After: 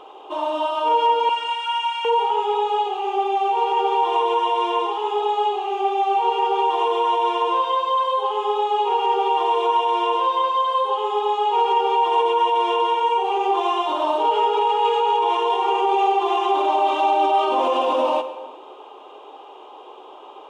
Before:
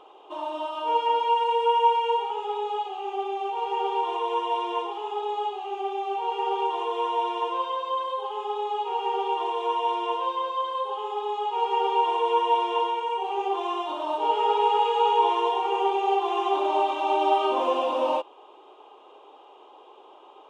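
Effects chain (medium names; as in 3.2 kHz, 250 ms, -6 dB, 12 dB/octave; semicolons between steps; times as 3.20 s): 1.29–2.05 s: steep high-pass 1.1 kHz 48 dB/octave; peak limiter -20 dBFS, peak gain reduction 9.5 dB; plate-style reverb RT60 1.4 s, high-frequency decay 0.75×, DRR 9 dB; trim +8 dB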